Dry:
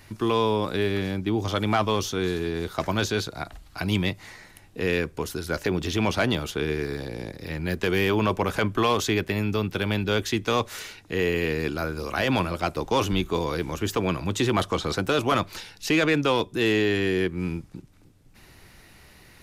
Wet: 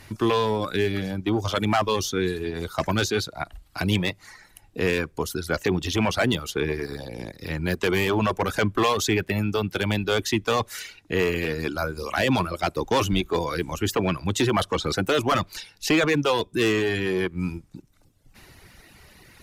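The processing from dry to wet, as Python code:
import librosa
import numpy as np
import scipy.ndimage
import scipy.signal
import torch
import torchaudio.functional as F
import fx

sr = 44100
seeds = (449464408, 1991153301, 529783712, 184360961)

y = fx.clip_asym(x, sr, top_db=-20.0, bottom_db=-17.0)
y = fx.dereverb_blind(y, sr, rt60_s=1.1)
y = y * librosa.db_to_amplitude(3.5)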